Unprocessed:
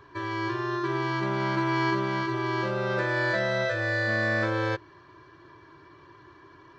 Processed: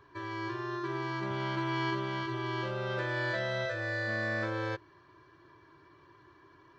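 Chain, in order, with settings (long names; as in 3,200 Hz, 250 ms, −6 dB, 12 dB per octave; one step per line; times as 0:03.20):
0:01.30–0:03.66: thirty-one-band graphic EQ 100 Hz +12 dB, 200 Hz −5 dB, 3,150 Hz +7 dB
level −7 dB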